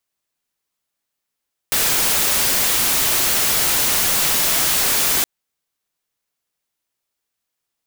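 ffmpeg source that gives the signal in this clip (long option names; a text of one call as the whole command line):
ffmpeg -f lavfi -i "anoisesrc=color=white:amplitude=0.231:duration=3.52:sample_rate=44100:seed=1" out.wav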